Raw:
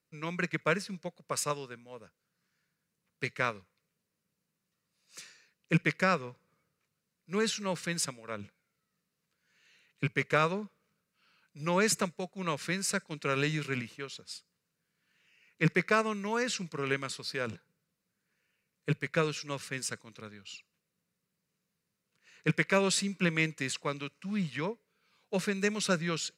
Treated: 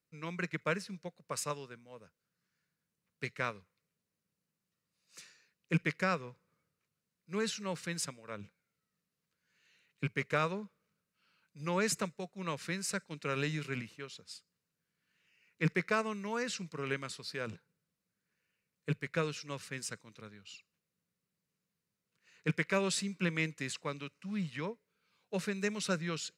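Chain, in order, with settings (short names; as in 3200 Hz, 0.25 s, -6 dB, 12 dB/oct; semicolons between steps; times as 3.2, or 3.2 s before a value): bell 70 Hz +2.5 dB 2.7 oct; gain -5 dB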